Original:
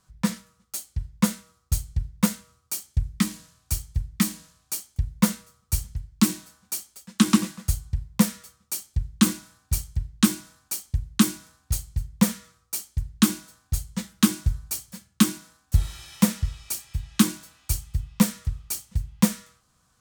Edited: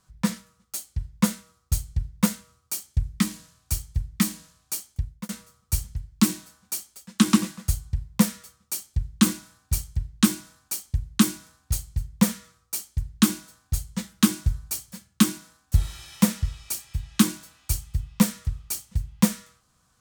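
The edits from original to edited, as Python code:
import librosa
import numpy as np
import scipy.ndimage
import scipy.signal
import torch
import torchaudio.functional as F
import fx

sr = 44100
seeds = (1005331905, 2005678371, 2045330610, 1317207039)

y = fx.edit(x, sr, fx.fade_out_span(start_s=4.91, length_s=0.38), tone=tone)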